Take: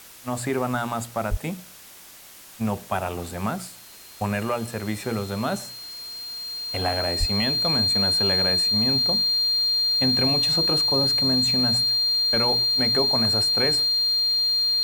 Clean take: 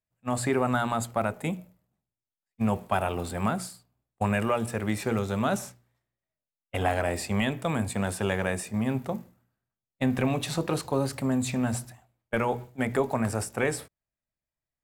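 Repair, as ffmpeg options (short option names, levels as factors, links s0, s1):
-filter_complex "[0:a]bandreject=f=4200:w=30,asplit=3[s0][s1][s2];[s0]afade=t=out:st=1.3:d=0.02[s3];[s1]highpass=f=140:w=0.5412,highpass=f=140:w=1.3066,afade=t=in:st=1.3:d=0.02,afade=t=out:st=1.42:d=0.02[s4];[s2]afade=t=in:st=1.42:d=0.02[s5];[s3][s4][s5]amix=inputs=3:normalize=0,asplit=3[s6][s7][s8];[s6]afade=t=out:st=7.19:d=0.02[s9];[s7]highpass=f=140:w=0.5412,highpass=f=140:w=1.3066,afade=t=in:st=7.19:d=0.02,afade=t=out:st=7.31:d=0.02[s10];[s8]afade=t=in:st=7.31:d=0.02[s11];[s9][s10][s11]amix=inputs=3:normalize=0,afftdn=nr=30:nf=-45"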